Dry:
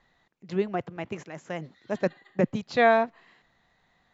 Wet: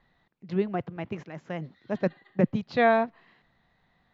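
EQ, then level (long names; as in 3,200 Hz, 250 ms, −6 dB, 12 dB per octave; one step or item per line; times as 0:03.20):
high-frequency loss of the air 300 metres
bass and treble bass +10 dB, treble +11 dB
low-shelf EQ 200 Hz −8.5 dB
0.0 dB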